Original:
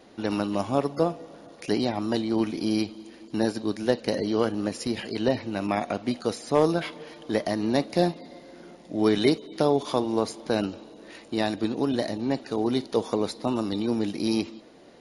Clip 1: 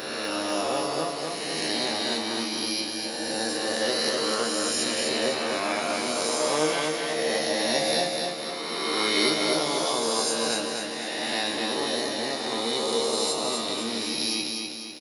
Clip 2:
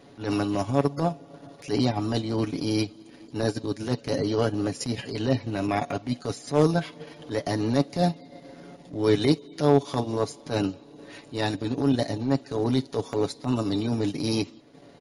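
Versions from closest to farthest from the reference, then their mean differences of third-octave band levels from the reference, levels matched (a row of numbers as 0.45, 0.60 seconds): 2, 1; 3.0, 11.5 decibels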